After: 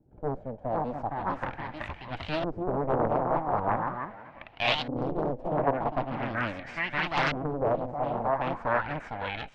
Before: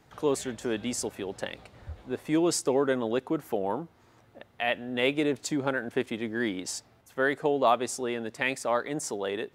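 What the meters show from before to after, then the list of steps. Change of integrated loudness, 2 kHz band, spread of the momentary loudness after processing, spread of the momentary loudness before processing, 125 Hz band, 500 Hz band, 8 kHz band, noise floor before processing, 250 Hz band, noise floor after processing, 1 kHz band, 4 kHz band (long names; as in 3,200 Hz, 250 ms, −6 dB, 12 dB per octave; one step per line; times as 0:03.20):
−1.0 dB, 0.0 dB, 9 LU, 12 LU, +6.0 dB, −2.0 dB, below −20 dB, −61 dBFS, −4.0 dB, −51 dBFS, +4.5 dB, 0.0 dB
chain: lower of the sound and its delayed copy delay 1.3 ms
high-shelf EQ 9,600 Hz −7.5 dB
feedback echo with a high-pass in the loop 478 ms, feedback 24%, high-pass 180 Hz, level −16.5 dB
delay with pitch and tempo change per echo 534 ms, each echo +2 semitones, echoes 2
auto-filter low-pass saw up 0.41 Hz 330–3,800 Hz
highs frequency-modulated by the lows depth 0.81 ms
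level −2 dB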